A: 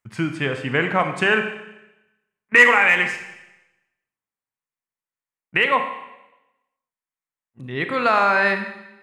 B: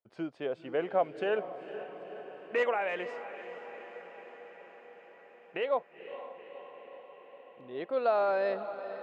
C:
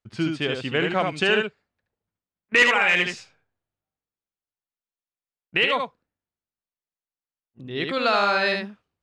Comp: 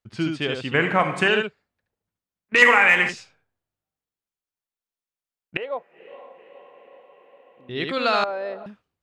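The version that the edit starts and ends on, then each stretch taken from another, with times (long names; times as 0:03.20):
C
0:00.74–0:01.28: punch in from A
0:02.62–0:03.09: punch in from A
0:05.57–0:07.69: punch in from B
0:08.24–0:08.66: punch in from B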